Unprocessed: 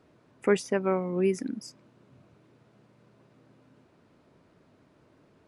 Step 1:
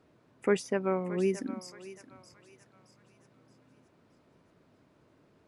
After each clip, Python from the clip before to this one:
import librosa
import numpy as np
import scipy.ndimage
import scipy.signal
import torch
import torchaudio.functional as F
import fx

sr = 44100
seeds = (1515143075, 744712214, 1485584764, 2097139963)

y = fx.echo_thinned(x, sr, ms=622, feedback_pct=43, hz=770.0, wet_db=-11.0)
y = y * librosa.db_to_amplitude(-3.0)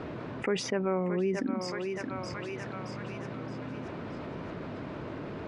y = scipy.signal.sosfilt(scipy.signal.butter(2, 3200.0, 'lowpass', fs=sr, output='sos'), x)
y = fx.env_flatten(y, sr, amount_pct=70)
y = y * librosa.db_to_amplitude(-4.5)